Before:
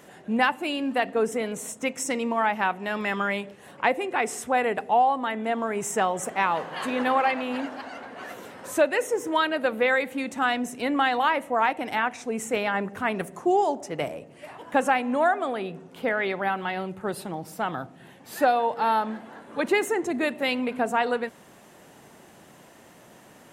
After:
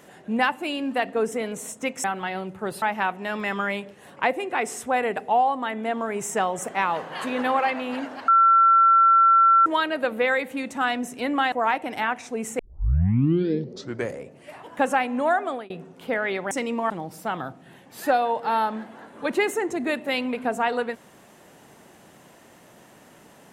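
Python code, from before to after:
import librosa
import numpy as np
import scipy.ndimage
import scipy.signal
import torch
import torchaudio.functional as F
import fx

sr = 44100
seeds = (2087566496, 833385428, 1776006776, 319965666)

y = fx.edit(x, sr, fx.swap(start_s=2.04, length_s=0.39, other_s=16.46, other_length_s=0.78),
    fx.bleep(start_s=7.89, length_s=1.38, hz=1350.0, db=-12.5),
    fx.cut(start_s=11.13, length_s=0.34),
    fx.tape_start(start_s=12.54, length_s=1.81),
    fx.fade_out_span(start_s=15.4, length_s=0.25, curve='qsin'), tone=tone)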